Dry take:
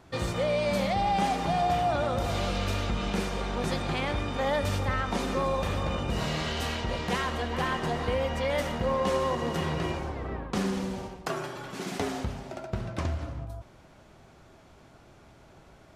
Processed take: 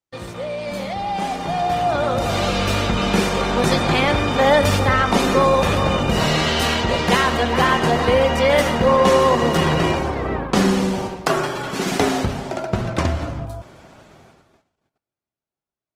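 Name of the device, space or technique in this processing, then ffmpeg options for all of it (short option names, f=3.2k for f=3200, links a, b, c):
video call: -af "highpass=f=110:p=1,dynaudnorm=f=250:g=17:m=14.5dB,agate=range=-39dB:threshold=-47dB:ratio=16:detection=peak" -ar 48000 -c:a libopus -b:a 20k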